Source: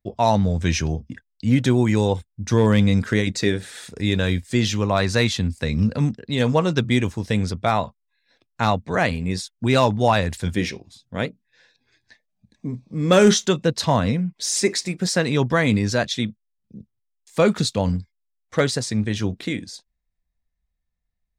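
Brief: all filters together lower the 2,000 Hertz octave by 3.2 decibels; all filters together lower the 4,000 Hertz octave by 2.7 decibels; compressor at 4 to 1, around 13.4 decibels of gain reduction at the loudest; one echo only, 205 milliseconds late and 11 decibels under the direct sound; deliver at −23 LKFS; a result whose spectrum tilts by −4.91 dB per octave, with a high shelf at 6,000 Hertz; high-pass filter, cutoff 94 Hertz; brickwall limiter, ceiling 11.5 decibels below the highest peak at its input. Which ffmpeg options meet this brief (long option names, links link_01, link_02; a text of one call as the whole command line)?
ffmpeg -i in.wav -af "highpass=94,equalizer=frequency=2000:width_type=o:gain=-3.5,equalizer=frequency=4000:width_type=o:gain=-3.5,highshelf=frequency=6000:gain=3,acompressor=threshold=-27dB:ratio=4,alimiter=limit=-23dB:level=0:latency=1,aecho=1:1:205:0.282,volume=10.5dB" out.wav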